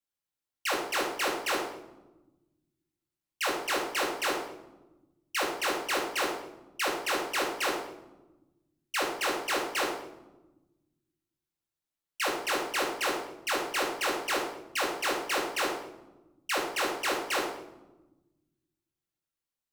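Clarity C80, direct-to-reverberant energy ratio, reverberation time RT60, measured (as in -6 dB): 7.5 dB, -3.0 dB, no single decay rate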